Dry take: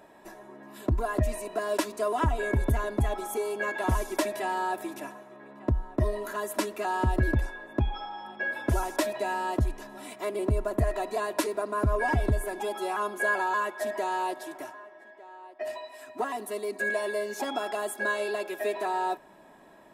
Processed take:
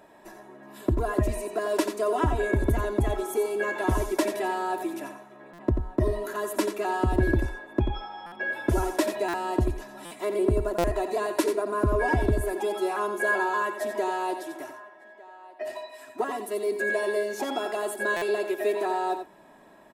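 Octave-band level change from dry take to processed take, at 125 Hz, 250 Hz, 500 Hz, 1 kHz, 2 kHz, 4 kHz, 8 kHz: +0.5 dB, +4.0 dB, +4.0 dB, +0.5 dB, +1.0 dB, +1.0 dB, +0.5 dB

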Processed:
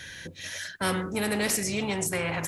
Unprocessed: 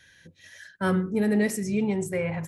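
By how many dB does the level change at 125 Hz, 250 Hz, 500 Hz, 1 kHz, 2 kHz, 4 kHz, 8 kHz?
-4.5 dB, -6.5 dB, -3.5 dB, +2.5 dB, +3.0 dB, +11.5 dB, +9.0 dB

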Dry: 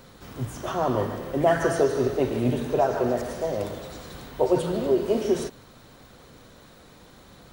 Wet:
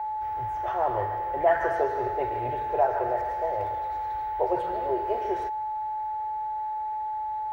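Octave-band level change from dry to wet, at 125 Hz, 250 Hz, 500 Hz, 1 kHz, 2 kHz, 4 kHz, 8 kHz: -11.0 dB, -12.5 dB, -4.0 dB, +7.0 dB, -1.0 dB, under -10 dB, under -20 dB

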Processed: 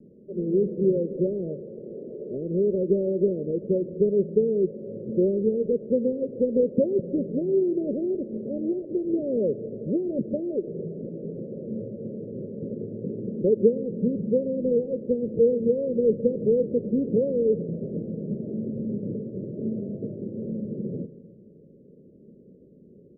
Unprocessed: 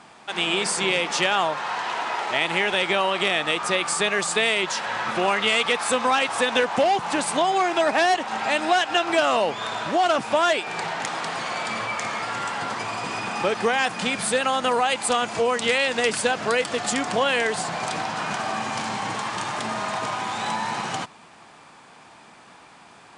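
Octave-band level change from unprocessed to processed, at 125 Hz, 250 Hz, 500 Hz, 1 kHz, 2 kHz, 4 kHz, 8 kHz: +6.0 dB, +5.5 dB, +1.5 dB, under -40 dB, under -40 dB, under -40 dB, under -40 dB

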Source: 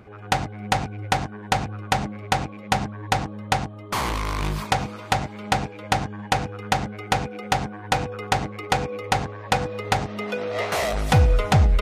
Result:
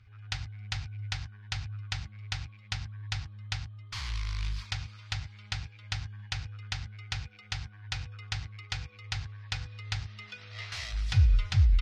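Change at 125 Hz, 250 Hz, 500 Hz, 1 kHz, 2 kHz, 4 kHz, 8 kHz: -6.5 dB, -22.5 dB, -33.0 dB, -25.0 dB, -12.0 dB, -7.0 dB, -12.0 dB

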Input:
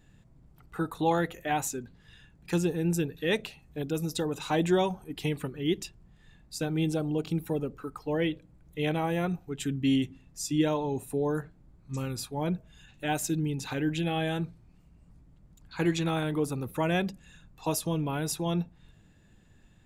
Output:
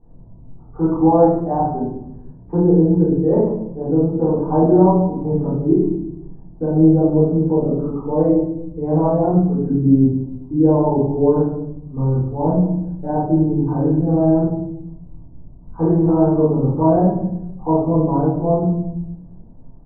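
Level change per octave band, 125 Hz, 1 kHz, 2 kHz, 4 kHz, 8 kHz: +14.0 dB, +11.5 dB, under -10 dB, under -40 dB, under -40 dB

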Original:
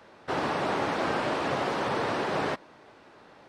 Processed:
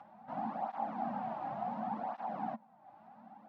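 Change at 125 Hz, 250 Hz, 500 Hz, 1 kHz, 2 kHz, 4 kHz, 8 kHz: -13.5 dB, -9.5 dB, -15.0 dB, -6.5 dB, -22.5 dB, under -25 dB, under -30 dB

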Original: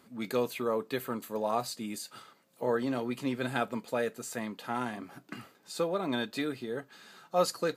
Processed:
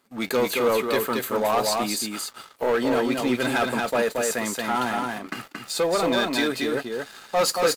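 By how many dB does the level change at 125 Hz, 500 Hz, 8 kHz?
+4.5 dB, +9.0 dB, +13.5 dB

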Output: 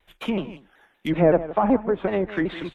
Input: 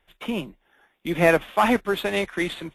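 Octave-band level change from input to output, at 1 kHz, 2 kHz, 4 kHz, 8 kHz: -2.5 dB, -8.0 dB, -7.5 dB, under -15 dB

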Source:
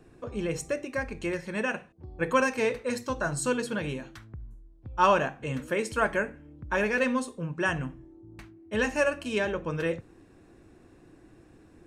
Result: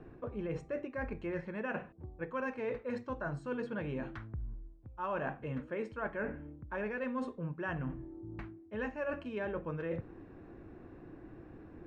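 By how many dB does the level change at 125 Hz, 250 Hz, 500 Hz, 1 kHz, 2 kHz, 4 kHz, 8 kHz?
-5.5 dB, -7.5 dB, -9.5 dB, -12.5 dB, -12.0 dB, -19.5 dB, under -30 dB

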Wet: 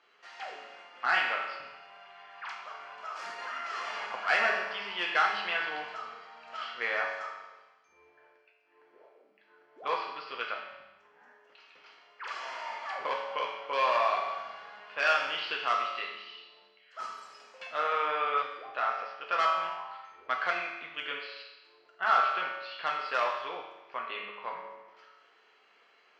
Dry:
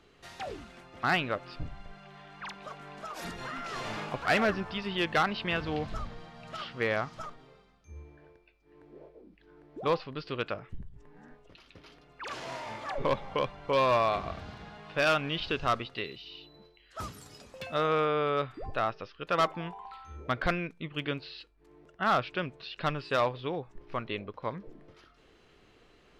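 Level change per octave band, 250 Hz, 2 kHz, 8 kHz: -17.5 dB, +3.0 dB, no reading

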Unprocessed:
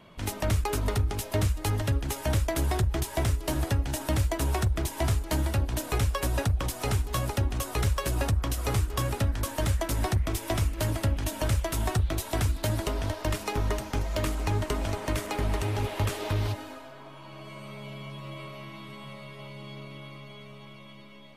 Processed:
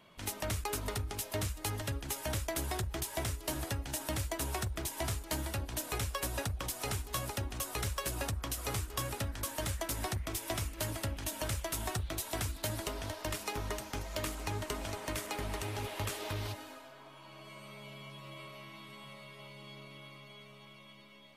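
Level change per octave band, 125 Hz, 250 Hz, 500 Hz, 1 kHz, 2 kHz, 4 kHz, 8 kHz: -11.5 dB, -9.5 dB, -8.0 dB, -6.5 dB, -5.0 dB, -3.5 dB, -2.0 dB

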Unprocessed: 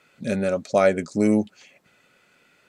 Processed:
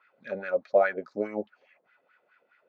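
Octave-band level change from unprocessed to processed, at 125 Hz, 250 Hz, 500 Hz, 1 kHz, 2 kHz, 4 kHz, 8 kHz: under -15 dB, -16.5 dB, -4.5 dB, -4.0 dB, -2.0 dB, under -15 dB, under -30 dB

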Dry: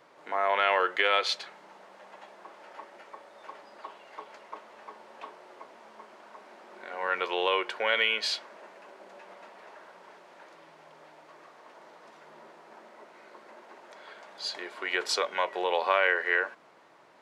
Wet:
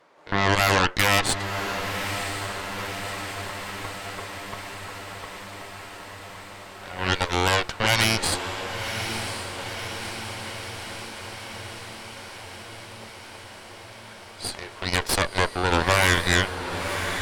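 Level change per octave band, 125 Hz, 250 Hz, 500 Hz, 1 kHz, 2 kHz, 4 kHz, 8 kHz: no reading, +15.0 dB, +3.0 dB, +4.5 dB, +5.5 dB, +7.0 dB, +15.5 dB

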